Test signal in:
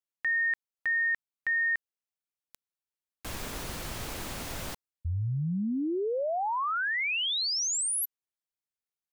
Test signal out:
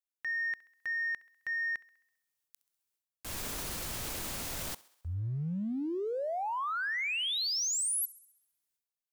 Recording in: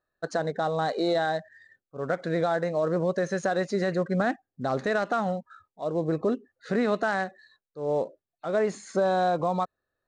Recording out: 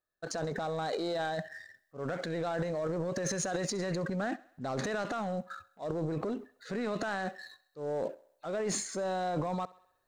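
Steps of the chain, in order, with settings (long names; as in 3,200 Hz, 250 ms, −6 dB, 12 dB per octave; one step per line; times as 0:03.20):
high-shelf EQ 4,600 Hz +8 dB
downward compressor 4 to 1, threshold −26 dBFS
leveller curve on the samples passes 1
transient designer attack −3 dB, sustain +12 dB
feedback echo with a high-pass in the loop 66 ms, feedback 57%, high-pass 310 Hz, level −20.5 dB
level −7.5 dB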